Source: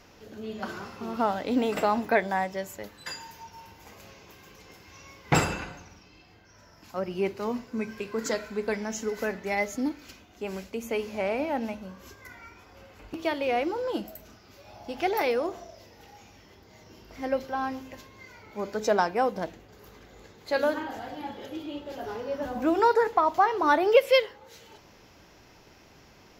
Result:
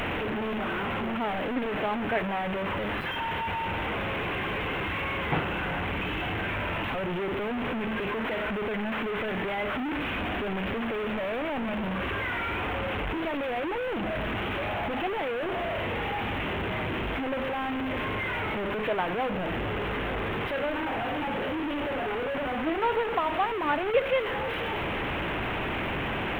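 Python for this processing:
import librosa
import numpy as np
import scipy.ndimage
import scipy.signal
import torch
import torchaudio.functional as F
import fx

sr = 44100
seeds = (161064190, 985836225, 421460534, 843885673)

y = fx.delta_mod(x, sr, bps=16000, step_db=-18.5)
y = np.where(np.abs(y) >= 10.0 ** (-41.5 / 20.0), y, 0.0)
y = y * librosa.db_to_amplitude(-5.5)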